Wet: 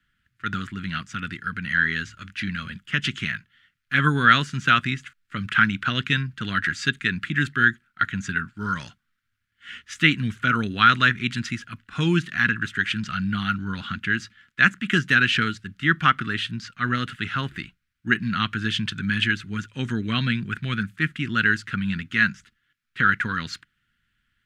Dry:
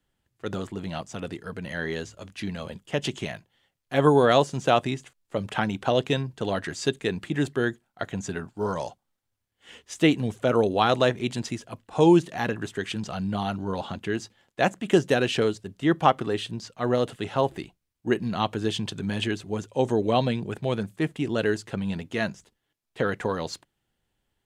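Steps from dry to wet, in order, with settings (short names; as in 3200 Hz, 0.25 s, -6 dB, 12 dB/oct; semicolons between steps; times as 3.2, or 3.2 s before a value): EQ curve 230 Hz 0 dB, 530 Hz -23 dB, 850 Hz -21 dB, 1400 Hz +12 dB, 8200 Hz -7 dB; gain +3 dB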